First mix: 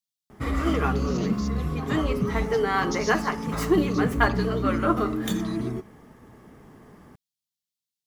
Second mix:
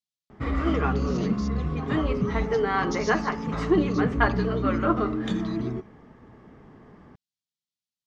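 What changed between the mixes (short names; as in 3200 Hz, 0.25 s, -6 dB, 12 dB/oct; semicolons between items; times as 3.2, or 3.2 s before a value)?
background: add air absorption 100 m; master: add air absorption 62 m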